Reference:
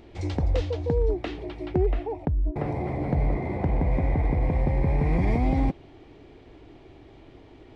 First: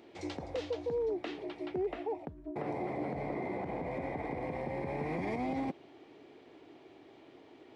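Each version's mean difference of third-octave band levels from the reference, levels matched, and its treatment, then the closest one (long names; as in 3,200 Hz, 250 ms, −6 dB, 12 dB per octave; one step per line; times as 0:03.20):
4.0 dB: high-pass filter 250 Hz 12 dB per octave
brickwall limiter −23 dBFS, peak gain reduction 9 dB
level −4 dB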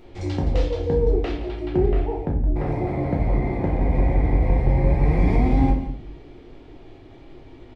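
2.5 dB: on a send: single-tap delay 169 ms −13.5 dB
on the sum: rectangular room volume 67 cubic metres, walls mixed, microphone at 0.87 metres
level −1 dB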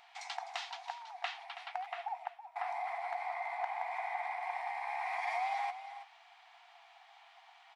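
19.5 dB: linear-phase brick-wall high-pass 670 Hz
on a send: single-tap delay 326 ms −12 dB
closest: second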